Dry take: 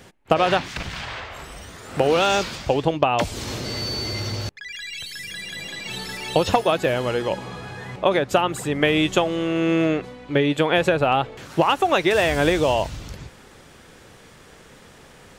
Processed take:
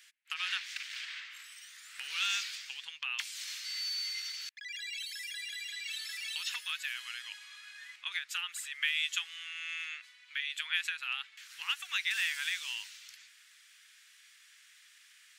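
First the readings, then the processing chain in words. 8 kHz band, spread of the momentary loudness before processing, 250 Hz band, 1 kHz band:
-6.5 dB, 14 LU, under -40 dB, -27.0 dB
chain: inverse Chebyshev high-pass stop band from 690 Hz, stop band 50 dB; trim -6.5 dB

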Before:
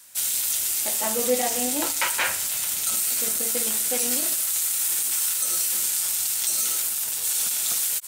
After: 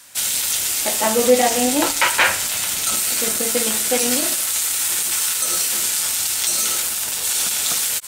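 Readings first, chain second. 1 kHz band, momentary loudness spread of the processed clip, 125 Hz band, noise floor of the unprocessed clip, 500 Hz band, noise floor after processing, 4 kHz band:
+9.5 dB, 4 LU, no reading, -28 dBFS, +9.5 dB, -24 dBFS, +8.0 dB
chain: treble shelf 7.6 kHz -10.5 dB; loudness maximiser +12 dB; trim -2 dB

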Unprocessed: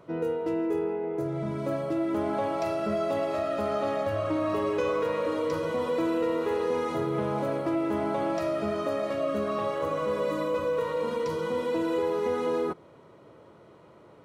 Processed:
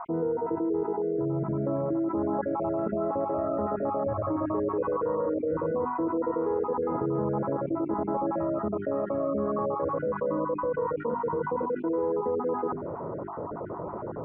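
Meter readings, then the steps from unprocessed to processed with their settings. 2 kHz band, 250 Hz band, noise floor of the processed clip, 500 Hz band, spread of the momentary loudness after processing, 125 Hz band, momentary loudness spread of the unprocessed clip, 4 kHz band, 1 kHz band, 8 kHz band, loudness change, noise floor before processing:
-8.0 dB, +1.0 dB, -36 dBFS, -0.5 dB, 2 LU, +2.0 dB, 2 LU, under -30 dB, +1.0 dB, no reading, -0.5 dB, -53 dBFS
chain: random holes in the spectrogram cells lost 30%; inverse Chebyshev low-pass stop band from 4.9 kHz, stop band 70 dB; hum notches 50/100/150/200/250/300/350/400 Hz; dynamic bell 630 Hz, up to -6 dB, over -44 dBFS, Q 4.6; level flattener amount 70%

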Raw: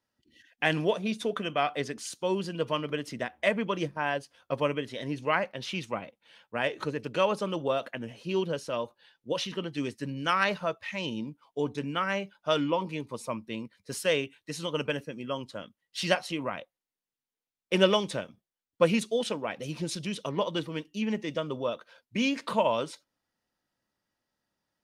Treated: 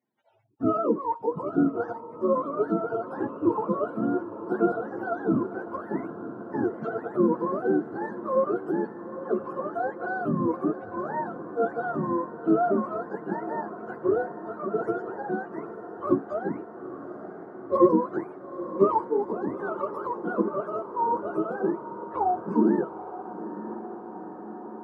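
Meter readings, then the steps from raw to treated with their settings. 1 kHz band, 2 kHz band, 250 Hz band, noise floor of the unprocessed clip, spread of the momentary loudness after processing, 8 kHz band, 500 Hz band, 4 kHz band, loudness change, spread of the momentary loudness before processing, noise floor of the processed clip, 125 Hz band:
+4.5 dB, -6.0 dB, +6.5 dB, under -85 dBFS, 13 LU, under -30 dB, +3.0 dB, under -30 dB, +2.5 dB, 11 LU, -42 dBFS, -1.0 dB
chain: spectrum inverted on a logarithmic axis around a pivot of 450 Hz; Chebyshev high-pass 230 Hz, order 3; echo that smears into a reverb 896 ms, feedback 73%, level -13 dB; trim +7 dB

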